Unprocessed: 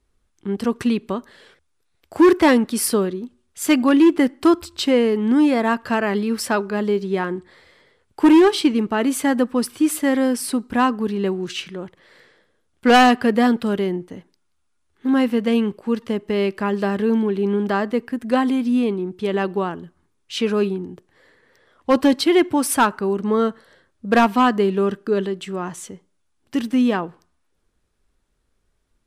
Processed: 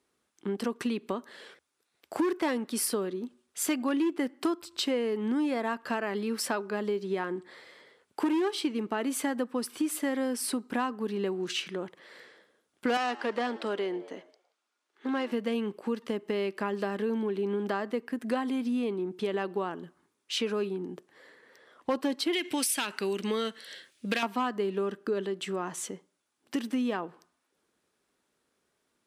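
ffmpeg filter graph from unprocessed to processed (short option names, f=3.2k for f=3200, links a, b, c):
-filter_complex "[0:a]asettb=1/sr,asplit=3[a][b][c];[a]atrim=end=12.974[d];[b]atrim=start=12.97:end=15.32,asetpts=PTS-STARTPTS,afade=t=in:d=0.004:c=qsin,afade=t=out:st=2.346:d=0.004:c=qsin,volume=12.5dB,asoftclip=hard,volume=-12.5dB,highpass=360,lowpass=6.7k,asplit=4[e][f][g][h];[f]adelay=110,afreqshift=89,volume=-22dB[i];[g]adelay=220,afreqshift=178,volume=-28.6dB[j];[h]adelay=330,afreqshift=267,volume=-35.1dB[k];[e][i][j][k]amix=inputs=4:normalize=0,atrim=end_sample=103635[l];[c]atrim=start=15.316[m];[d][l]acrossfade=d=0.004:c1=hsin:c2=qsin[n];[n][m]acrossfade=d=0.004:c1=qsin:c2=hsin,asettb=1/sr,asplit=3[o][p][q];[o]atrim=end=22.334[r];[p]atrim=start=22.33:end=24.23,asetpts=PTS-STARTPTS,afade=t=in:d=0.004:c=qsin,afade=t=out:st=1.896:d=0.004:c=qsin,highshelf=f=1.7k:t=q:w=1.5:g=13,acompressor=threshold=-14dB:ratio=6:attack=3.2:release=140:knee=1:detection=peak[s];[q]atrim=start=24.226[t];[r][s]acrossfade=d=0.004:c1=hsin:c2=qsin[u];[u][t]acrossfade=d=0.004:c1=qsin:c2=hsin,highpass=240,acompressor=threshold=-30dB:ratio=3"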